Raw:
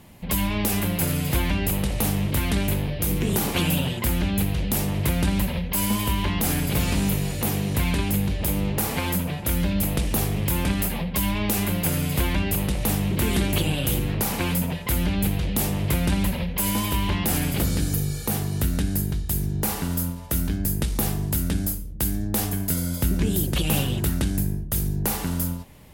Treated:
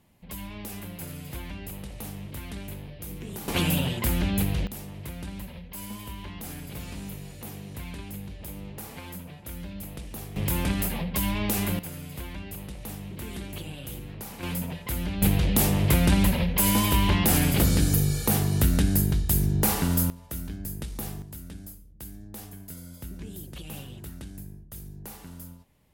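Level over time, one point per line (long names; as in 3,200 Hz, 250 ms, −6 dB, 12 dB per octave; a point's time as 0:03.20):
−14.5 dB
from 0:03.48 −2 dB
from 0:04.67 −15 dB
from 0:10.36 −3 dB
from 0:11.79 −14.5 dB
from 0:14.43 −7 dB
from 0:15.22 +2 dB
from 0:20.10 −10.5 dB
from 0:21.22 −17 dB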